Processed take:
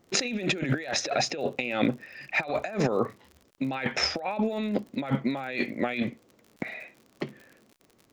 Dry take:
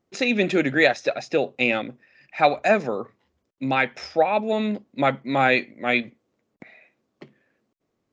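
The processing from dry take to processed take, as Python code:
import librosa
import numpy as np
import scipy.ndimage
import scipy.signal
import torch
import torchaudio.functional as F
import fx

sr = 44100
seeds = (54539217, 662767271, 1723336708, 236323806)

y = fx.over_compress(x, sr, threshold_db=-32.0, ratio=-1.0)
y = fx.dmg_crackle(y, sr, seeds[0], per_s=55.0, level_db=-43.0)
y = y * 10.0 ** (2.5 / 20.0)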